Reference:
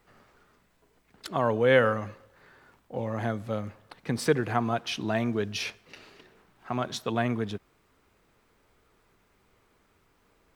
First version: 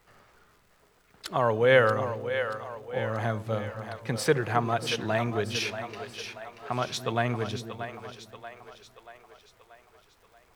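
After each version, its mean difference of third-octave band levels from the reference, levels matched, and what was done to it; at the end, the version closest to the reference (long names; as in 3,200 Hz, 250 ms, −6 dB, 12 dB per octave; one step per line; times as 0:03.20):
5.0 dB: parametric band 250 Hz −7 dB 0.94 octaves
surface crackle 130 per second −54 dBFS
on a send: echo with a time of its own for lows and highs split 430 Hz, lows 270 ms, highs 633 ms, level −9 dB
on the sum: level +2 dB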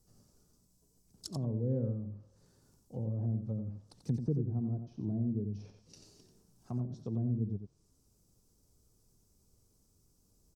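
11.5 dB: treble cut that deepens with the level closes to 380 Hz, closed at −26 dBFS
drawn EQ curve 140 Hz 0 dB, 970 Hz −19 dB, 2,000 Hz −29 dB, 3,600 Hz −15 dB, 5,500 Hz +4 dB
on a send: single-tap delay 89 ms −7.5 dB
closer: first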